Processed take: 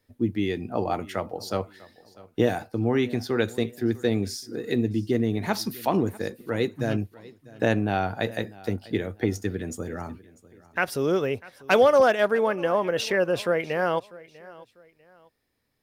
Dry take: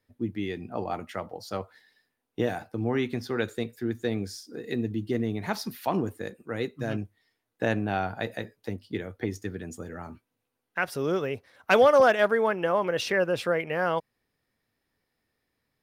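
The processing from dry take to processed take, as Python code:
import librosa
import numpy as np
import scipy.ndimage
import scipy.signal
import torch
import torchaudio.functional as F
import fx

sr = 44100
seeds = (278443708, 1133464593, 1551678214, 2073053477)

p1 = fx.peak_eq(x, sr, hz=160.0, db=-2.5, octaves=0.77)
p2 = fx.rider(p1, sr, range_db=5, speed_s=0.5)
p3 = p1 + (p2 * 10.0 ** (-1.5 / 20.0))
p4 = fx.peak_eq(p3, sr, hz=1400.0, db=-3.5, octaves=2.3)
p5 = fx.echo_feedback(p4, sr, ms=646, feedback_pct=32, wet_db=-21.0)
y = p5 * 10.0 ** (-1.0 / 20.0)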